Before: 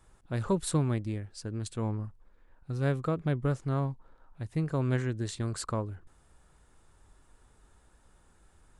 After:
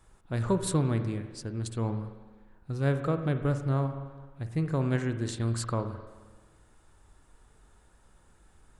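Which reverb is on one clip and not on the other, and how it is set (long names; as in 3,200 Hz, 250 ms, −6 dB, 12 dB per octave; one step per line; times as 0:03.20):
spring reverb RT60 1.4 s, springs 43/52 ms, chirp 60 ms, DRR 8 dB
level +1 dB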